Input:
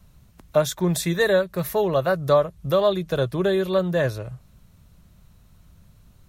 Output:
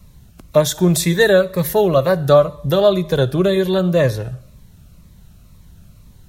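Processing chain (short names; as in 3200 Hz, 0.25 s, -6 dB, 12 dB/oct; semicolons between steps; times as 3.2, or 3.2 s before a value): on a send at -18 dB: reverb RT60 0.65 s, pre-delay 43 ms; on the sum: cascading phaser falling 2 Hz; gain +8 dB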